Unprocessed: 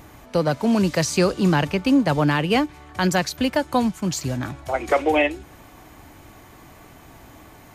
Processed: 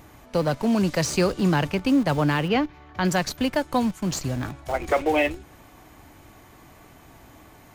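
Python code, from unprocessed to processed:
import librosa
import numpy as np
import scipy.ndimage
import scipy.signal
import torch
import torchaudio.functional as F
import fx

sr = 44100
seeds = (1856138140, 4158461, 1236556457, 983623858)

p1 = fx.schmitt(x, sr, flips_db=-25.0)
p2 = x + (p1 * 10.0 ** (-11.5 / 20.0))
p3 = fx.moving_average(p2, sr, points=5, at=(2.48, 3.05))
y = p3 * 10.0 ** (-3.5 / 20.0)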